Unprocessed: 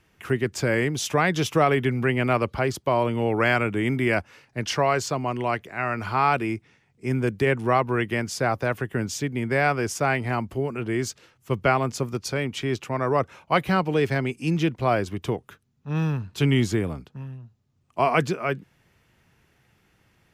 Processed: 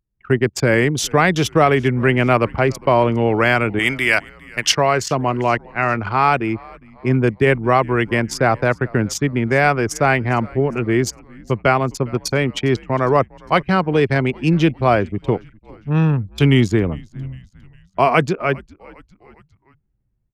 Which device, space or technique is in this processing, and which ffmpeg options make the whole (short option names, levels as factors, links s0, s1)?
voice memo with heavy noise removal: -filter_complex "[0:a]asettb=1/sr,asplit=3[s0][s1][s2];[s0]atrim=end=3.794[s3];[s1]atrim=start=3.79:end=4.72,asetpts=PTS-STARTPTS,afade=t=in:d=0.004:c=qsin,afade=t=out:st=0.926:d=0.004:c=qsin,tiltshelf=f=760:g=-9.5[s4];[s2]atrim=start=4.716[s5];[s3][s4]acrossfade=d=0.004:c1=hsin:c2=qsin[s6];[s6][s5]acrossfade=d=0.004:c1=qsin:c2=hsin,anlmdn=25.1,dynaudnorm=f=150:g=3:m=2.82,asplit=4[s7][s8][s9][s10];[s8]adelay=406,afreqshift=-94,volume=0.0631[s11];[s9]adelay=812,afreqshift=-188,volume=0.0335[s12];[s10]adelay=1218,afreqshift=-282,volume=0.0178[s13];[s7][s11][s12][s13]amix=inputs=4:normalize=0"